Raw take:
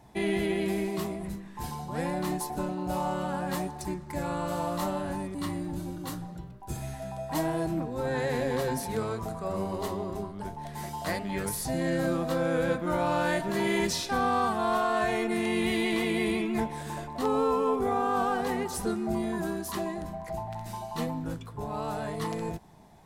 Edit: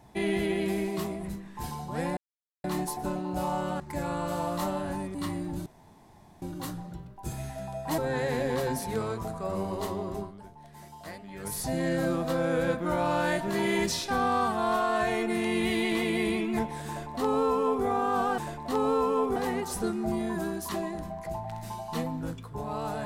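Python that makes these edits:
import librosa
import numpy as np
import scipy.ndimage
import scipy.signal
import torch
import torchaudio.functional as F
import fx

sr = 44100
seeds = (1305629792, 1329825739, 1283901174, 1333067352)

y = fx.edit(x, sr, fx.insert_silence(at_s=2.17, length_s=0.47),
    fx.cut(start_s=3.33, length_s=0.67),
    fx.insert_room_tone(at_s=5.86, length_s=0.76),
    fx.cut(start_s=7.42, length_s=0.57),
    fx.fade_down_up(start_s=10.21, length_s=1.38, db=-11.0, fade_s=0.21),
    fx.duplicate(start_s=16.88, length_s=0.98, to_s=18.39), tone=tone)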